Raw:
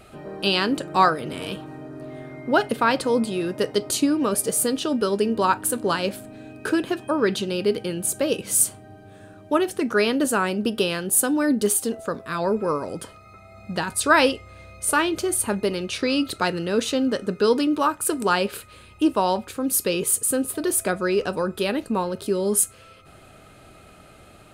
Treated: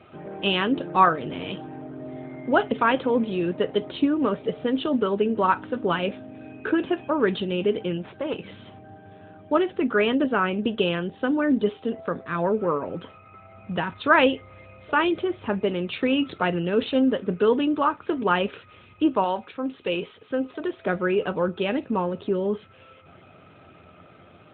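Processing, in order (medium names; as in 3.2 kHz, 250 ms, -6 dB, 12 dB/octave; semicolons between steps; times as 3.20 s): 7.97–8.44 s: valve stage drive 22 dB, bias 0.65; 19.24–20.84 s: bass shelf 310 Hz -9 dB; feedback comb 87 Hz, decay 0.16 s, harmonics all, mix 60%; trim +3.5 dB; AMR-NB 12.2 kbps 8 kHz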